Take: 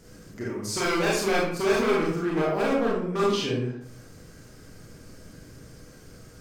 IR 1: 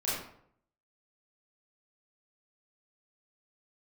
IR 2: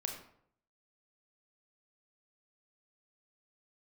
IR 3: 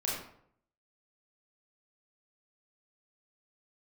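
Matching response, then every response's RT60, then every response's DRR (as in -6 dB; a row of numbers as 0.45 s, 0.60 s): 3; 0.65 s, 0.65 s, 0.65 s; -9.5 dB, 2.0 dB, -5.5 dB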